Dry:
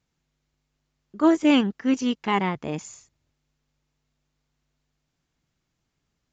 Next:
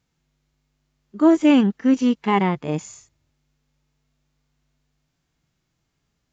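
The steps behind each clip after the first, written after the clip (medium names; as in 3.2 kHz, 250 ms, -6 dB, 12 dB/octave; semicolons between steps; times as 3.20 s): harmonic-percussive split percussive -12 dB; in parallel at +2 dB: peak limiter -18.5 dBFS, peak gain reduction 8.5 dB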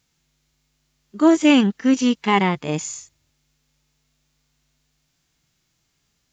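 treble shelf 2.2 kHz +11 dB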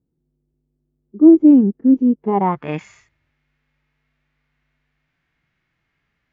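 low-pass sweep 350 Hz -> 2 kHz, 2.18–2.70 s; trim -1 dB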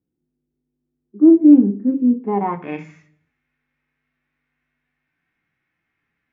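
reverberation RT60 0.45 s, pre-delay 3 ms, DRR 4 dB; trim -9.5 dB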